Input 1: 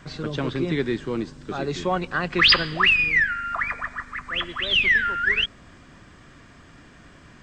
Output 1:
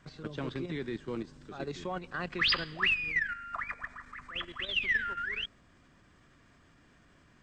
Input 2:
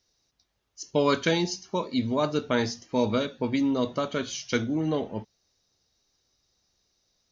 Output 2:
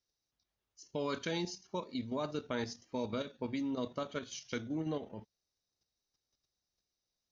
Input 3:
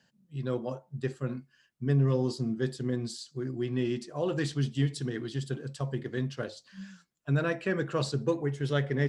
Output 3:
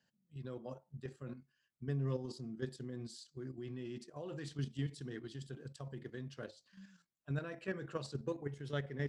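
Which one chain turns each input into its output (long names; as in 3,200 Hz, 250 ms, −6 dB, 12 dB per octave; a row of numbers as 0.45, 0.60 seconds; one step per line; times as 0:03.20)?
output level in coarse steps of 9 dB
level −8 dB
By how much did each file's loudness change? −11.5, −11.5, −12.0 LU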